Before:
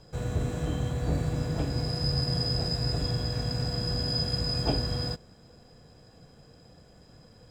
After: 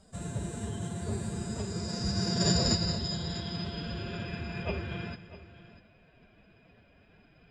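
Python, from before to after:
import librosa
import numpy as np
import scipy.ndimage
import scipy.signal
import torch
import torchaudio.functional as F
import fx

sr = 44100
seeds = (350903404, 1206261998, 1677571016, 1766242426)

y = fx.filter_sweep_lowpass(x, sr, from_hz=8800.0, to_hz=2500.0, start_s=1.28, end_s=4.29, q=5.7)
y = fx.pitch_keep_formants(y, sr, semitones=6.0)
y = fx.echo_multitap(y, sr, ms=(227, 647), db=(-16.5, -16.0))
y = F.gain(torch.from_numpy(y), -6.0).numpy()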